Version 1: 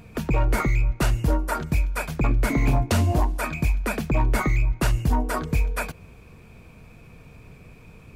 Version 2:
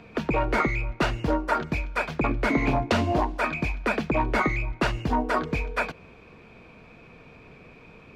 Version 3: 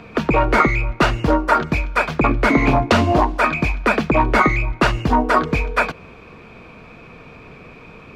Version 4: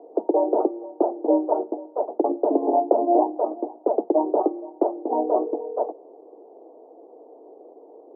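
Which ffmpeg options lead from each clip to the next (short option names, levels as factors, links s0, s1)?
-filter_complex "[0:a]acrossover=split=210 5000:gain=0.251 1 0.0708[s0][s1][s2];[s0][s1][s2]amix=inputs=3:normalize=0,volume=1.41"
-af "equalizer=f=1200:t=o:w=0.41:g=4,volume=2.51"
-af "asuperpass=centerf=500:order=12:qfactor=0.93"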